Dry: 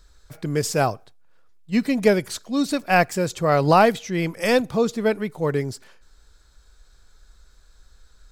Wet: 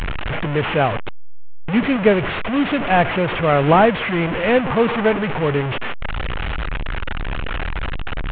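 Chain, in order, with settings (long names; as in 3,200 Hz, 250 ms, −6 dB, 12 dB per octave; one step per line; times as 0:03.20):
linear delta modulator 16 kbit/s, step −19 dBFS
0:04.65–0:05.17: parametric band 1,000 Hz +5 dB 0.86 octaves
level +3 dB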